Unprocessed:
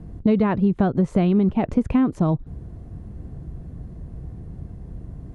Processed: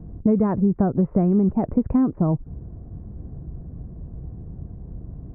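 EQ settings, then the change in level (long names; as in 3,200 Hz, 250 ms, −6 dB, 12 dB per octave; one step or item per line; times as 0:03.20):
Gaussian smoothing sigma 6.5 samples
0.0 dB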